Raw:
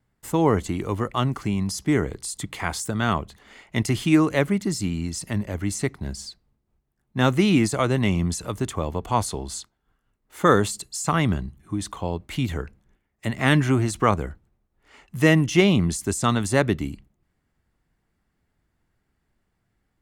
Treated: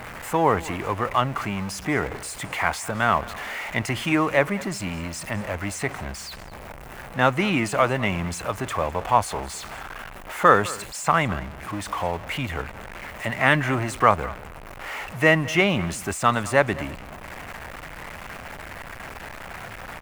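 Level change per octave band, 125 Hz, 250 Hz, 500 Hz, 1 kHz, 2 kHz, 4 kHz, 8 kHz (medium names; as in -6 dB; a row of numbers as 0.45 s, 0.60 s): -5.0 dB, -5.0 dB, +0.5 dB, +5.0 dB, +5.0 dB, -0.5 dB, -2.5 dB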